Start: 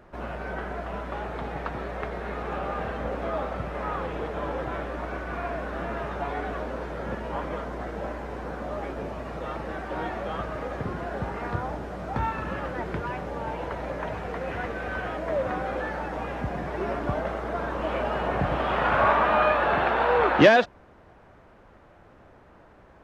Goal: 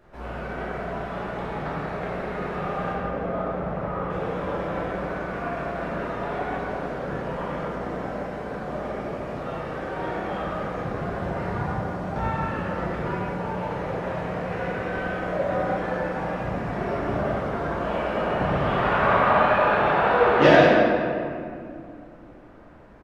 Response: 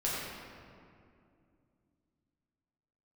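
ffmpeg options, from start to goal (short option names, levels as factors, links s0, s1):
-filter_complex "[0:a]asetnsamples=n=441:p=0,asendcmd='2.92 highshelf g -11;4.1 highshelf g 2',highshelf=f=2800:g=3,aecho=1:1:166:0.299[s0];[1:a]atrim=start_sample=2205[s1];[s0][s1]afir=irnorm=-1:irlink=0,volume=0.531"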